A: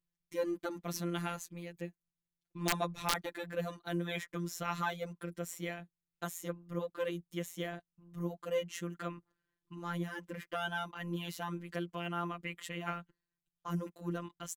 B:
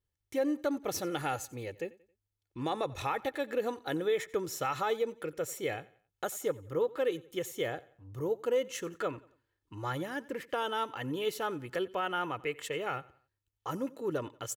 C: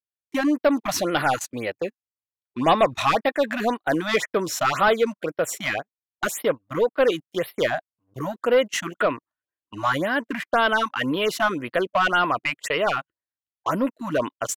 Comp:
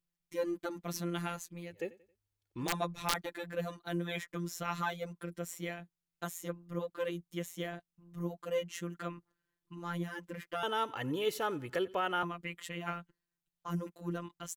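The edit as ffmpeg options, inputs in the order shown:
-filter_complex "[1:a]asplit=2[s0][s1];[0:a]asplit=3[s2][s3][s4];[s2]atrim=end=1.85[s5];[s0]atrim=start=1.69:end=2.75[s6];[s3]atrim=start=2.59:end=10.632[s7];[s1]atrim=start=10.628:end=12.232[s8];[s4]atrim=start=12.228[s9];[s5][s6]acrossfade=d=0.16:c1=tri:c2=tri[s10];[s10][s7]acrossfade=d=0.16:c1=tri:c2=tri[s11];[s11][s8]acrossfade=d=0.004:c1=hsin:c2=hsin[s12];[s12][s9]acrossfade=d=0.004:c1=hsin:c2=hsin"

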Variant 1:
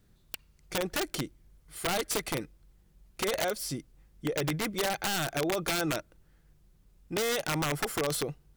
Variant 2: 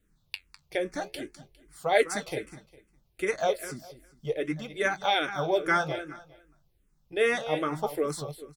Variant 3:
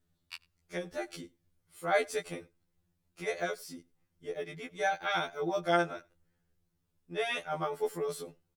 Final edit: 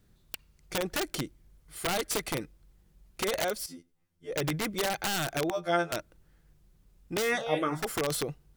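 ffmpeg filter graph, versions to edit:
-filter_complex "[2:a]asplit=2[s0][s1];[0:a]asplit=4[s2][s3][s4][s5];[s2]atrim=end=3.662[s6];[s0]atrim=start=3.658:end=4.312[s7];[s3]atrim=start=4.308:end=5.502[s8];[s1]atrim=start=5.498:end=5.922[s9];[s4]atrim=start=5.918:end=7.33[s10];[1:a]atrim=start=7.23:end=7.87[s11];[s5]atrim=start=7.77[s12];[s6][s7]acrossfade=d=0.004:c1=hsin:c2=hsin[s13];[s13][s8]acrossfade=d=0.004:c1=hsin:c2=hsin[s14];[s14][s9]acrossfade=d=0.004:c1=hsin:c2=hsin[s15];[s15][s10]acrossfade=d=0.004:c1=hsin:c2=hsin[s16];[s16][s11]acrossfade=d=0.1:c1=tri:c2=tri[s17];[s17][s12]acrossfade=d=0.1:c1=tri:c2=tri"

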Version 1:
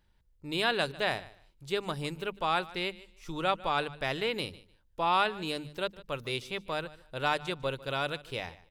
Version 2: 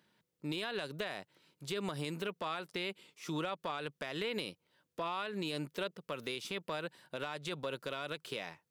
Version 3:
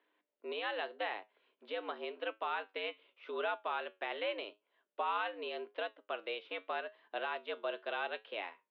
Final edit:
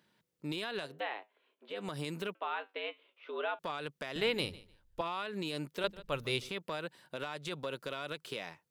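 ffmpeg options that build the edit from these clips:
-filter_complex "[2:a]asplit=2[s0][s1];[0:a]asplit=2[s2][s3];[1:a]asplit=5[s4][s5][s6][s7][s8];[s4]atrim=end=1.03[s9];[s0]atrim=start=0.79:end=1.93[s10];[s5]atrim=start=1.69:end=2.352[s11];[s1]atrim=start=2.348:end=3.592[s12];[s6]atrim=start=3.588:end=4.162[s13];[s2]atrim=start=4.158:end=5.012[s14];[s7]atrim=start=5.008:end=5.842[s15];[s3]atrim=start=5.838:end=6.492[s16];[s8]atrim=start=6.488[s17];[s9][s10]acrossfade=d=0.24:c1=tri:c2=tri[s18];[s18][s11]acrossfade=d=0.24:c1=tri:c2=tri[s19];[s19][s12]acrossfade=d=0.004:c1=hsin:c2=hsin[s20];[s20][s13]acrossfade=d=0.004:c1=hsin:c2=hsin[s21];[s21][s14]acrossfade=d=0.004:c1=hsin:c2=hsin[s22];[s22][s15]acrossfade=d=0.004:c1=hsin:c2=hsin[s23];[s23][s16]acrossfade=d=0.004:c1=hsin:c2=hsin[s24];[s24][s17]acrossfade=d=0.004:c1=hsin:c2=hsin"

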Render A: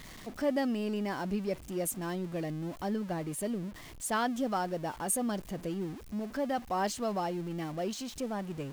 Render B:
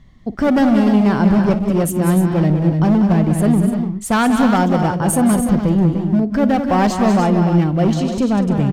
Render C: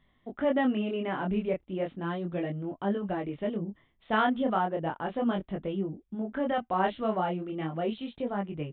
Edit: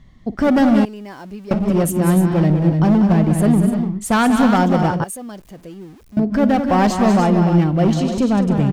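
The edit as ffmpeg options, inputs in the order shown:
-filter_complex "[0:a]asplit=2[s0][s1];[1:a]asplit=3[s2][s3][s4];[s2]atrim=end=0.852[s5];[s0]atrim=start=0.848:end=1.512[s6];[s3]atrim=start=1.508:end=5.042[s7];[s1]atrim=start=5.038:end=6.172[s8];[s4]atrim=start=6.168[s9];[s5][s6]acrossfade=d=0.004:c1=hsin:c2=hsin[s10];[s10][s7]acrossfade=d=0.004:c1=hsin:c2=hsin[s11];[s11][s8]acrossfade=d=0.004:c1=hsin:c2=hsin[s12];[s12][s9]acrossfade=d=0.004:c1=hsin:c2=hsin"

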